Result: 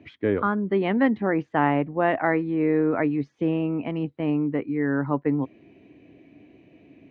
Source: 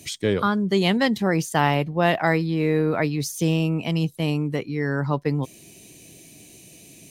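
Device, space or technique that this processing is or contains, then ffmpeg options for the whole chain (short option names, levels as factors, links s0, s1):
bass cabinet: -af "highpass=70,equalizer=f=120:t=q:w=4:g=-4,equalizer=f=170:t=q:w=4:g=-8,equalizer=f=280:t=q:w=4:g=7,lowpass=f=2100:w=0.5412,lowpass=f=2100:w=1.3066,volume=0.841"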